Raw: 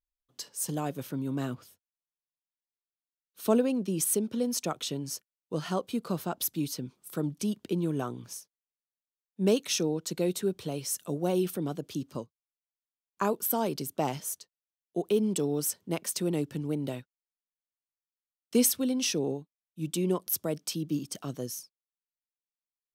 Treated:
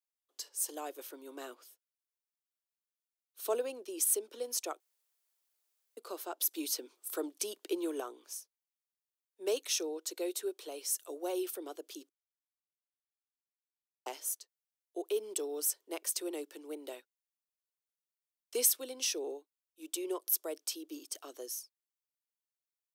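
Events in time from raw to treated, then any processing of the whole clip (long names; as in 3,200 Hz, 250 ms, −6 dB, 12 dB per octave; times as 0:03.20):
0:04.80–0:05.97: fill with room tone
0:06.51–0:08.00: clip gain +5.5 dB
0:12.09–0:14.06: silence
whole clip: Butterworth high-pass 330 Hz 48 dB per octave; high-shelf EQ 5,400 Hz +7 dB; level −6.5 dB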